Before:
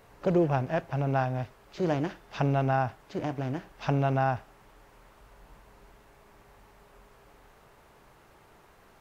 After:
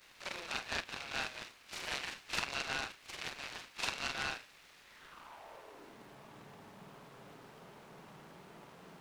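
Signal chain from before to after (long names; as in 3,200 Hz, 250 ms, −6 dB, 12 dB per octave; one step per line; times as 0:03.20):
every overlapping window played backwards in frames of 101 ms
high-pass filter sweep 2,500 Hz → 170 Hz, 0:04.84–0:06.09
short delay modulated by noise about 1,300 Hz, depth 0.059 ms
level +5 dB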